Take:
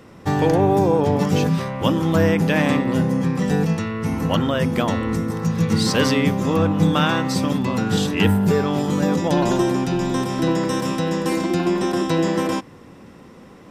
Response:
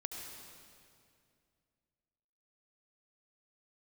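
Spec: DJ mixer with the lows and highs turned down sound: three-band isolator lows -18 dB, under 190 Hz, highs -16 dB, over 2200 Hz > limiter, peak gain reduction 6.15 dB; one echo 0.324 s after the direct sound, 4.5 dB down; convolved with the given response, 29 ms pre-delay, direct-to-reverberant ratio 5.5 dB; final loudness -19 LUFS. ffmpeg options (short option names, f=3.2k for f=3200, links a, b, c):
-filter_complex "[0:a]aecho=1:1:324:0.596,asplit=2[a][b];[1:a]atrim=start_sample=2205,adelay=29[c];[b][c]afir=irnorm=-1:irlink=0,volume=-4.5dB[d];[a][d]amix=inputs=2:normalize=0,acrossover=split=190 2200:gain=0.126 1 0.158[e][f][g];[e][f][g]amix=inputs=3:normalize=0,volume=2.5dB,alimiter=limit=-8.5dB:level=0:latency=1"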